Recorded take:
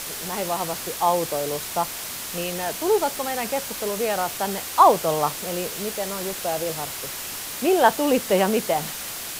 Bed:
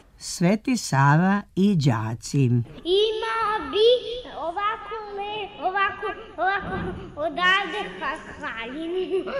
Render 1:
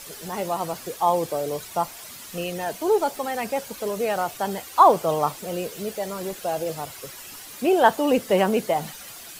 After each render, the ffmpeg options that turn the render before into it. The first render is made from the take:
ffmpeg -i in.wav -af "afftdn=noise_reduction=11:noise_floor=-33" out.wav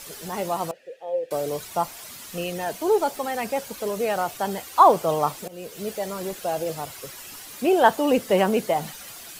ffmpeg -i in.wav -filter_complex "[0:a]asettb=1/sr,asplit=3[link_01][link_02][link_03];[link_01]atrim=end=0.714[link_04];[link_02]atrim=start=0.71:end=1.31,asetpts=PTS-STARTPTS,afade=type=in:duration=0.004:curve=qsin,afade=type=out:start_time=0.596:duration=0.004:curve=qsin,asplit=3[link_05][link_06][link_07];[link_05]bandpass=frequency=530:width_type=q:width=8,volume=0dB[link_08];[link_06]bandpass=frequency=1840:width_type=q:width=8,volume=-6dB[link_09];[link_07]bandpass=frequency=2480:width_type=q:width=8,volume=-9dB[link_10];[link_08][link_09][link_10]amix=inputs=3:normalize=0[link_11];[link_03]atrim=start=1.306[link_12];[link_04][link_11]acrossfade=duration=0.004:curve1=hsin:curve2=qsin[link_13];[link_13][link_12]acrossfade=duration=0.004:curve1=qsin:curve2=hsin,asplit=2[link_14][link_15];[link_14]atrim=end=5.48,asetpts=PTS-STARTPTS,afade=type=out:start_time=5.476:duration=0.004:curve=hsin:silence=0.112202[link_16];[link_15]atrim=start=5.48,asetpts=PTS-STARTPTS,afade=type=in:duration=0.4:silence=0.112202[link_17];[link_16][link_17]concat=n=2:v=0:a=1" out.wav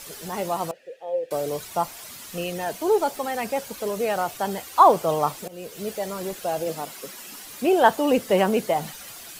ffmpeg -i in.wav -filter_complex "[0:a]asettb=1/sr,asplit=3[link_01][link_02][link_03];[link_01]atrim=end=6.674[link_04];[link_02]atrim=start=6.67:end=7.44,asetpts=PTS-STARTPTS,afade=type=in:duration=0.004:curve=qsin,afade=type=out:start_time=0.766:duration=0.004:curve=qsin,lowshelf=frequency=150:width_type=q:width=3:gain=-8.5[link_05];[link_03]atrim=start=7.436[link_06];[link_04][link_05]acrossfade=duration=0.004:curve1=hsin:curve2=qsin[link_07];[link_07][link_06]acrossfade=duration=0.004:curve1=qsin:curve2=hsin" out.wav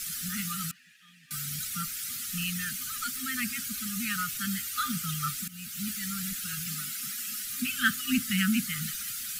ffmpeg -i in.wav -af "afftfilt=real='re*(1-between(b*sr/4096,260,1200))':imag='im*(1-between(b*sr/4096,260,1200))':win_size=4096:overlap=0.75,highshelf=frequency=5400:gain=7" out.wav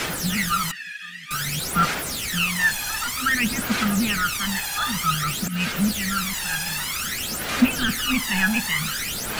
ffmpeg -i in.wav -filter_complex "[0:a]asplit=2[link_01][link_02];[link_02]highpass=frequency=720:poles=1,volume=29dB,asoftclip=type=tanh:threshold=-12dB[link_03];[link_01][link_03]amix=inputs=2:normalize=0,lowpass=frequency=1700:poles=1,volume=-6dB,aphaser=in_gain=1:out_gain=1:delay=1.2:decay=0.72:speed=0.53:type=sinusoidal" out.wav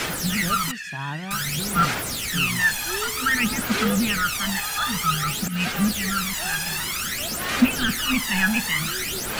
ffmpeg -i in.wav -i bed.wav -filter_complex "[1:a]volume=-14dB[link_01];[0:a][link_01]amix=inputs=2:normalize=0" out.wav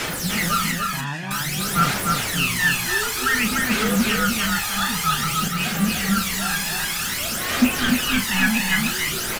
ffmpeg -i in.wav -filter_complex "[0:a]asplit=2[link_01][link_02];[link_02]adelay=36,volume=-8dB[link_03];[link_01][link_03]amix=inputs=2:normalize=0,aecho=1:1:295:0.668" out.wav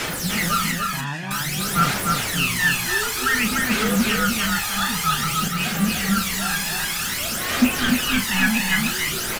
ffmpeg -i in.wav -af anull out.wav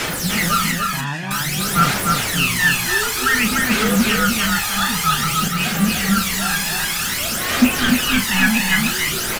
ffmpeg -i in.wav -af "volume=3.5dB" out.wav

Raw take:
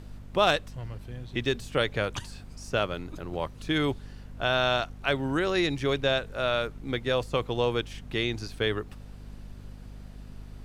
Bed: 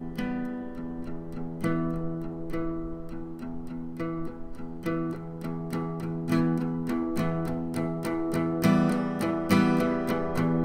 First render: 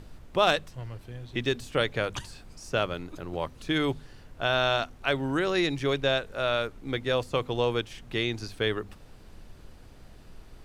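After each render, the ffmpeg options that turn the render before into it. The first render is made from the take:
ffmpeg -i in.wav -af "bandreject=frequency=50:width_type=h:width=4,bandreject=frequency=100:width_type=h:width=4,bandreject=frequency=150:width_type=h:width=4,bandreject=frequency=200:width_type=h:width=4,bandreject=frequency=250:width_type=h:width=4" out.wav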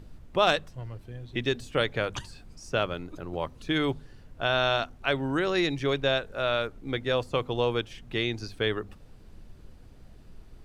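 ffmpeg -i in.wav -af "afftdn=noise_reduction=6:noise_floor=-50" out.wav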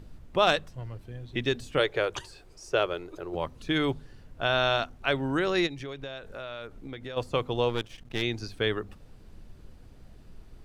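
ffmpeg -i in.wav -filter_complex "[0:a]asettb=1/sr,asplit=3[link_01][link_02][link_03];[link_01]atrim=end=1.794[link_04];[link_02]atrim=start=1.79:end=3.35,asetpts=PTS-STARTPTS,afade=type=in:duration=0.004:curve=qsin,afade=type=out:start_time=1.556:duration=0.004:curve=qsin,lowshelf=frequency=300:width_type=q:width=3:gain=-6.5[link_05];[link_03]atrim=start=3.346[link_06];[link_04][link_05]acrossfade=duration=0.004:curve1=hsin:curve2=qsin[link_07];[link_07][link_06]acrossfade=duration=0.004:curve1=qsin:curve2=hsin,asplit=3[link_08][link_09][link_10];[link_08]afade=type=out:start_time=5.66:duration=0.02[link_11];[link_09]acompressor=threshold=-36dB:ratio=5:attack=3.2:release=140:knee=1:detection=peak,afade=type=in:start_time=5.66:duration=0.02,afade=type=out:start_time=7.16:duration=0.02[link_12];[link_10]afade=type=in:start_time=7.16:duration=0.02[link_13];[link_11][link_12][link_13]amix=inputs=3:normalize=0,asplit=3[link_14][link_15][link_16];[link_14]afade=type=out:start_time=7.68:duration=0.02[link_17];[link_15]aeval=exprs='if(lt(val(0),0),0.251*val(0),val(0))':channel_layout=same,afade=type=in:start_time=7.68:duration=0.02,afade=type=out:start_time=8.21:duration=0.02[link_18];[link_16]afade=type=in:start_time=8.21:duration=0.02[link_19];[link_17][link_18][link_19]amix=inputs=3:normalize=0" out.wav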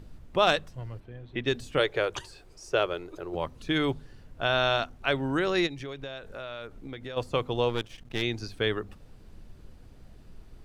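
ffmpeg -i in.wav -filter_complex "[0:a]asplit=3[link_01][link_02][link_03];[link_01]afade=type=out:start_time=0.99:duration=0.02[link_04];[link_02]bass=frequency=250:gain=-4,treble=frequency=4000:gain=-14,afade=type=in:start_time=0.99:duration=0.02,afade=type=out:start_time=1.46:duration=0.02[link_05];[link_03]afade=type=in:start_time=1.46:duration=0.02[link_06];[link_04][link_05][link_06]amix=inputs=3:normalize=0" out.wav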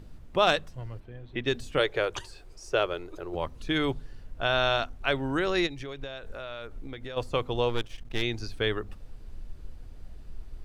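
ffmpeg -i in.wav -af "asubboost=boost=2.5:cutoff=78" out.wav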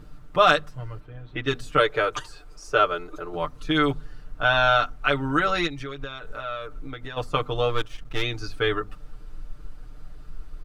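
ffmpeg -i in.wav -af "equalizer=frequency=1300:width_type=o:width=0.44:gain=10.5,aecho=1:1:6.7:0.86" out.wav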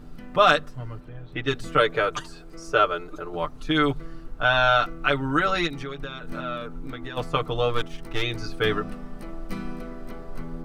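ffmpeg -i in.wav -i bed.wav -filter_complex "[1:a]volume=-12.5dB[link_01];[0:a][link_01]amix=inputs=2:normalize=0" out.wav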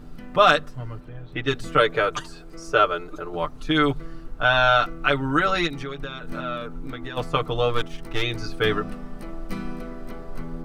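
ffmpeg -i in.wav -af "volume=1.5dB,alimiter=limit=-3dB:level=0:latency=1" out.wav

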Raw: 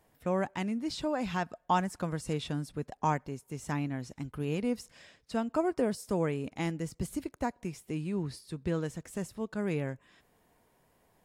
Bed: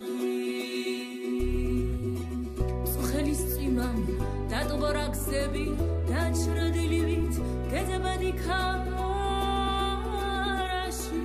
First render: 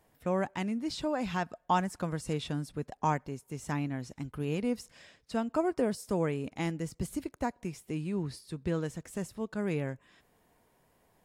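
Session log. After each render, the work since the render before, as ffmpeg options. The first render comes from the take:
ffmpeg -i in.wav -af anull out.wav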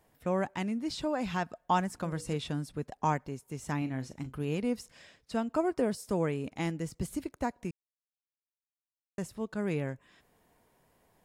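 ffmpeg -i in.wav -filter_complex "[0:a]asettb=1/sr,asplit=3[link_01][link_02][link_03];[link_01]atrim=end=1.884[link_04];[link_02]atrim=start=1.88:end=2.36,asetpts=PTS-STARTPTS,afade=type=in:duration=0.004:curve=qsin,afade=type=out:start_time=0.476:duration=0.004:curve=qsin,bandreject=frequency=60:width_type=h:width=6,bandreject=frequency=120:width_type=h:width=6,bandreject=frequency=180:width_type=h:width=6,bandreject=frequency=240:width_type=h:width=6,bandreject=frequency=300:width_type=h:width=6,bandreject=frequency=360:width_type=h:width=6,bandreject=frequency=420:width_type=h:width=6,bandreject=frequency=480:width_type=h:width=6,bandreject=frequency=540:width_type=h:width=6[link_05];[link_03]atrim=start=2.356[link_06];[link_04][link_05]acrossfade=duration=0.004:curve1=hsin:curve2=qsin[link_07];[link_07][link_06]acrossfade=duration=0.004:curve1=qsin:curve2=hsin,asettb=1/sr,asplit=3[link_08][link_09][link_10];[link_08]atrim=end=3.784[link_11];[link_09]atrim=start=3.78:end=4.37,asetpts=PTS-STARTPTS,afade=type=in:duration=0.004:curve=qsin,afade=type=out:start_time=0.586:duration=0.004:curve=qsin,asplit=2[link_12][link_13];[link_13]adelay=38,volume=-11dB[link_14];[link_12][link_14]amix=inputs=2:normalize=0,atrim=end_sample=26019[link_15];[link_10]atrim=start=4.366[link_16];[link_11][link_15]acrossfade=duration=0.004:curve1=hsin:curve2=qsin[link_17];[link_17][link_16]acrossfade=duration=0.004:curve1=qsin:curve2=hsin,asplit=3[link_18][link_19][link_20];[link_18]atrim=end=7.71,asetpts=PTS-STARTPTS,afade=type=out:start_time=7.706:duration=0.004:curve=hsin[link_21];[link_19]atrim=start=7.71:end=9.18,asetpts=PTS-STARTPTS,volume=0[link_22];[link_20]atrim=start=9.18,asetpts=PTS-STARTPTS,afade=type=in:duration=0.004:curve=hsin[link_23];[link_21][link_22][link_23]concat=n=3:v=0:a=1" out.wav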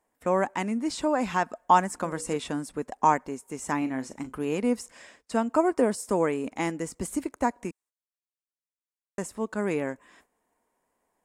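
ffmpeg -i in.wav -af "equalizer=frequency=125:width_type=o:width=1:gain=-10,equalizer=frequency=250:width_type=o:width=1:gain=7,equalizer=frequency=500:width_type=o:width=1:gain=4,equalizer=frequency=1000:width_type=o:width=1:gain=8,equalizer=frequency=2000:width_type=o:width=1:gain=5,equalizer=frequency=4000:width_type=o:width=1:gain=-3,equalizer=frequency=8000:width_type=o:width=1:gain=11,agate=range=-14dB:threshold=-58dB:ratio=16:detection=peak" out.wav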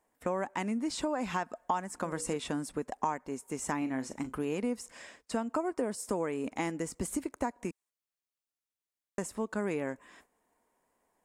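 ffmpeg -i in.wav -af "acompressor=threshold=-30dB:ratio=4" out.wav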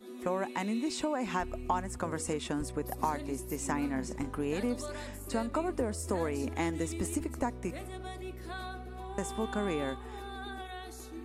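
ffmpeg -i in.wav -i bed.wav -filter_complex "[1:a]volume=-13dB[link_01];[0:a][link_01]amix=inputs=2:normalize=0" out.wav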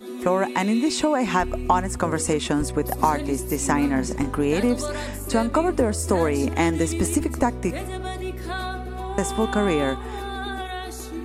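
ffmpeg -i in.wav -af "volume=11.5dB" out.wav

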